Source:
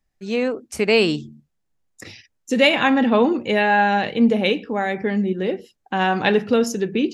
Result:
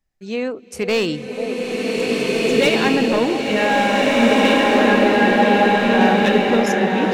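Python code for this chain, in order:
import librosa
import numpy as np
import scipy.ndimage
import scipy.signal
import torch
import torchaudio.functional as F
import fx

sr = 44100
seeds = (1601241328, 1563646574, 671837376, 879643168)

y = fx.echo_stepped(x, sr, ms=489, hz=630.0, octaves=0.7, feedback_pct=70, wet_db=-5.5)
y = np.clip(y, -10.0 ** (-11.5 / 20.0), 10.0 ** (-11.5 / 20.0))
y = fx.rev_bloom(y, sr, seeds[0], attack_ms=1850, drr_db=-5.5)
y = y * librosa.db_to_amplitude(-2.0)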